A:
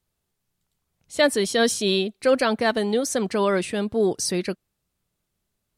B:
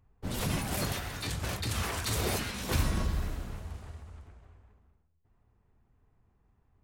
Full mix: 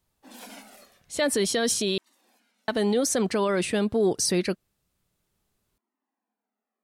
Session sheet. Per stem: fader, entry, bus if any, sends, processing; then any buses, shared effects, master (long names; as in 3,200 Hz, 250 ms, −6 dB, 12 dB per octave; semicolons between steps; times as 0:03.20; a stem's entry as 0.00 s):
+2.0 dB, 0.00 s, muted 0:01.98–0:02.68, no send, no processing
−4.0 dB, 0.00 s, no send, Butterworth high-pass 210 Hz 96 dB per octave; flanger whose copies keep moving one way falling 0.51 Hz; automatic ducking −24 dB, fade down 0.55 s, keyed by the first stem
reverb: not used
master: brickwall limiter −15 dBFS, peak gain reduction 9.5 dB